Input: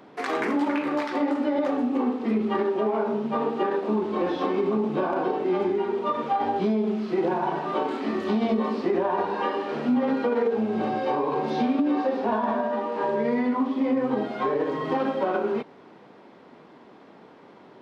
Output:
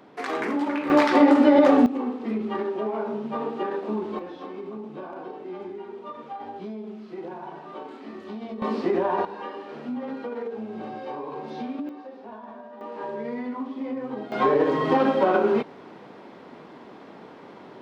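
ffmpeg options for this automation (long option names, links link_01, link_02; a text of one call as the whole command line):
ffmpeg -i in.wav -af "asetnsamples=nb_out_samples=441:pad=0,asendcmd='0.9 volume volume 9dB;1.86 volume volume -3.5dB;4.19 volume volume -12dB;8.62 volume volume 0.5dB;9.25 volume volume -9dB;11.89 volume volume -16.5dB;12.81 volume volume -7.5dB;14.32 volume volume 5dB',volume=-1.5dB" out.wav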